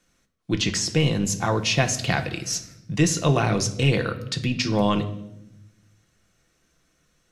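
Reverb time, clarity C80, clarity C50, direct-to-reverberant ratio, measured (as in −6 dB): 0.85 s, 16.0 dB, 13.0 dB, 5.5 dB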